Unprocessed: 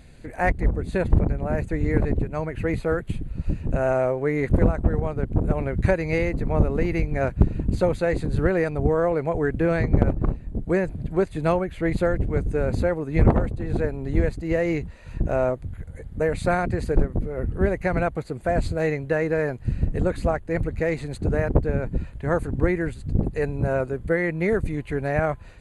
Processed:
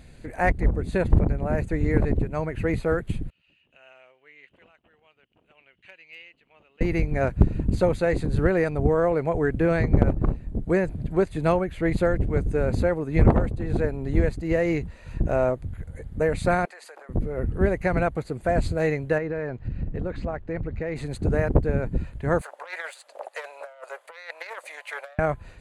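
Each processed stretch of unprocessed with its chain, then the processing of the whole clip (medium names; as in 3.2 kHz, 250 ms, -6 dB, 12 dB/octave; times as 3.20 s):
3.30–6.81 s: band-pass filter 2.9 kHz, Q 10 + hard clipper -34 dBFS
16.65–17.09 s: high-pass 710 Hz 24 dB/octave + compression 4:1, threshold -42 dBFS
19.18–20.96 s: compression 3:1, threshold -26 dBFS + distance through air 160 m
22.41–25.19 s: self-modulated delay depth 0.25 ms + Chebyshev high-pass 570 Hz, order 5 + compressor with a negative ratio -36 dBFS, ratio -0.5
whole clip: none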